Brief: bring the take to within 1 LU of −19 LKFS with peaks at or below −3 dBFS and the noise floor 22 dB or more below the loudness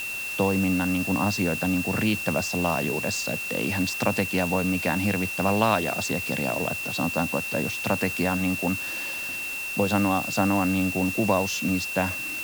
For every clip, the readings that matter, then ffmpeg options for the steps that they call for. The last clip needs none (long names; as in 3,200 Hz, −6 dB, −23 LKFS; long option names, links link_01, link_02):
interfering tone 2,700 Hz; level of the tone −30 dBFS; background noise floor −32 dBFS; target noise floor −47 dBFS; integrated loudness −25.0 LKFS; sample peak −6.0 dBFS; target loudness −19.0 LKFS
→ -af "bandreject=frequency=2700:width=30"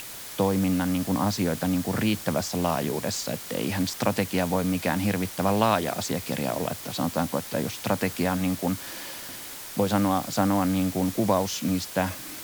interfering tone none found; background noise floor −39 dBFS; target noise floor −49 dBFS
→ -af "afftdn=noise_reduction=10:noise_floor=-39"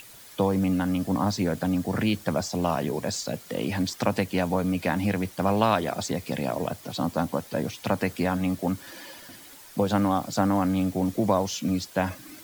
background noise floor −48 dBFS; target noise floor −49 dBFS
→ -af "afftdn=noise_reduction=6:noise_floor=-48"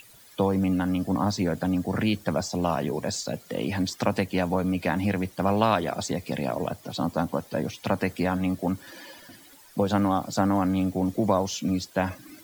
background noise floor −52 dBFS; integrated loudness −27.0 LKFS; sample peak −7.0 dBFS; target loudness −19.0 LKFS
→ -af "volume=8dB,alimiter=limit=-3dB:level=0:latency=1"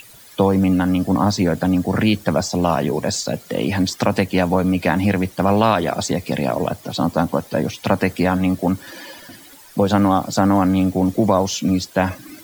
integrated loudness −19.0 LKFS; sample peak −3.0 dBFS; background noise floor −44 dBFS